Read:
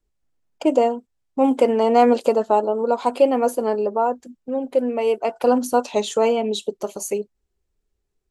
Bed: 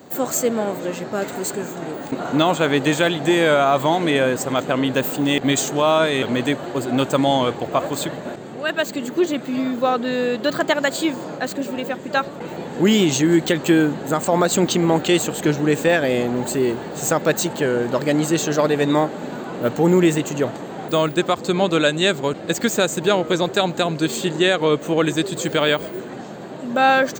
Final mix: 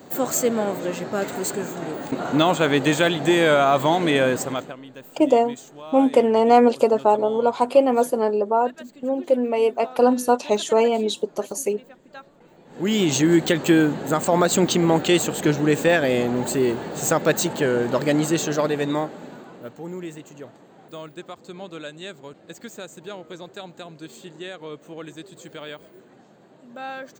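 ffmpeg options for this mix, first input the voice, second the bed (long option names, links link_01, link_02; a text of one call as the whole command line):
ffmpeg -i stem1.wav -i stem2.wav -filter_complex "[0:a]adelay=4550,volume=0.5dB[link_01];[1:a]volume=19.5dB,afade=type=out:start_time=4.35:duration=0.41:silence=0.0944061,afade=type=in:start_time=12.65:duration=0.52:silence=0.0944061,afade=type=out:start_time=18.08:duration=1.65:silence=0.133352[link_02];[link_01][link_02]amix=inputs=2:normalize=0" out.wav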